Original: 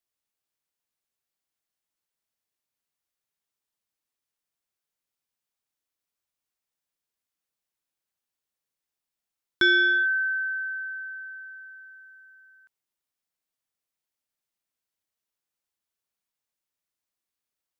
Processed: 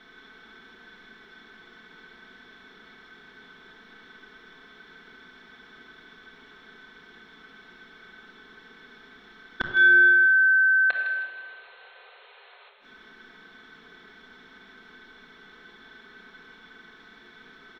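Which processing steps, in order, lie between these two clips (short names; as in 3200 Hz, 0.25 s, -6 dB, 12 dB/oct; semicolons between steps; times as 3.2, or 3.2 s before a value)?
per-bin compression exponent 0.6; low shelf 140 Hz -9.5 dB; comb 4.6 ms, depth 68%; in parallel at +2 dB: limiter -17.5 dBFS, peak gain reduction 8.5 dB; on the sum: compressor 2.5:1, threshold -35 dBFS, peak gain reduction 16 dB; painted sound noise, 10.9–12.7, 380–4300 Hz -22 dBFS; flipped gate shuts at -20 dBFS, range -39 dB; air absorption 300 m; thin delay 0.158 s, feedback 34%, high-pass 2000 Hz, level -8 dB; shoebox room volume 2000 m³, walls mixed, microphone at 1.9 m; gain +9 dB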